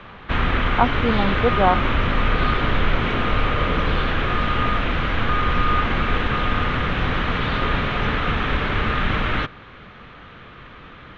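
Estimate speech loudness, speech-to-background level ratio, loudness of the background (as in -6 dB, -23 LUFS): -22.5 LUFS, -0.5 dB, -22.0 LUFS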